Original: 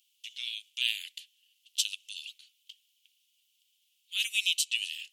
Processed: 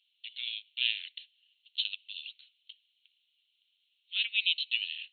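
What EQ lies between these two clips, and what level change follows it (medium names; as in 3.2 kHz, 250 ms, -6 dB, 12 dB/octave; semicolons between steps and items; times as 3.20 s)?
brick-wall FIR band-pass 1.3–4.3 kHz; 0.0 dB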